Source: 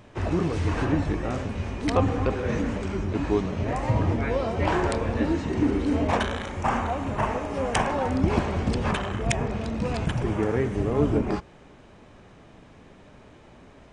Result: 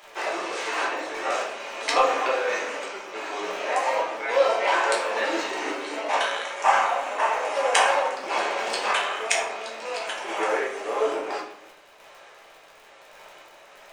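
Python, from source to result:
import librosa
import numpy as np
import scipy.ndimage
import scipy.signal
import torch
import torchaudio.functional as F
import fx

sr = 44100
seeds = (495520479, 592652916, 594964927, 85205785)

p1 = scipy.signal.sosfilt(scipy.signal.butter(4, 480.0, 'highpass', fs=sr, output='sos'), x)
p2 = fx.tilt_shelf(p1, sr, db=-4.5, hz=930.0)
p3 = fx.dmg_crackle(p2, sr, seeds[0], per_s=43.0, level_db=-40.0)
p4 = fx.tremolo_random(p3, sr, seeds[1], hz=3.5, depth_pct=55)
p5 = 10.0 ** (-19.5 / 20.0) * np.tanh(p4 / 10.0 ** (-19.5 / 20.0))
p6 = p4 + (p5 * 10.0 ** (-10.0 / 20.0))
p7 = fx.room_shoebox(p6, sr, seeds[2], volume_m3=110.0, walls='mixed', distance_m=1.2)
y = p7 * 10.0 ** (1.0 / 20.0)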